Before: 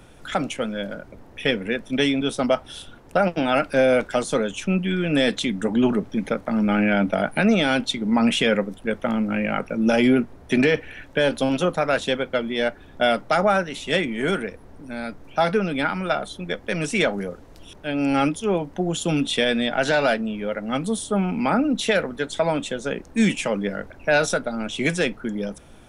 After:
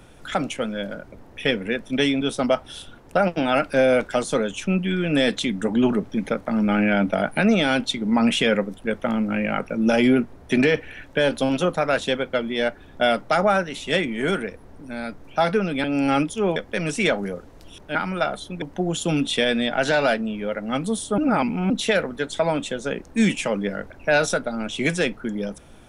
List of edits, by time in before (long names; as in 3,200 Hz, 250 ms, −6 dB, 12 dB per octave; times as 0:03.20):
0:15.84–0:16.51: swap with 0:17.90–0:18.62
0:21.18–0:21.70: reverse